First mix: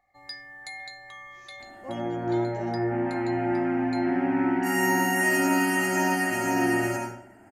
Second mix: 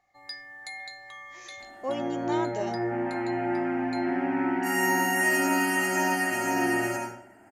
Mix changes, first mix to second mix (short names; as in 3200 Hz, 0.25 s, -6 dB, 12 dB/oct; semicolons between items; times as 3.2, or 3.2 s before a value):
speech +11.0 dB; master: add low shelf 220 Hz -8 dB